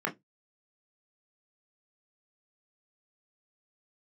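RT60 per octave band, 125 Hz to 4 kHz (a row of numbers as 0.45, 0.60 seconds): 0.25, 0.20, 0.20, 0.15, 0.10, 0.15 seconds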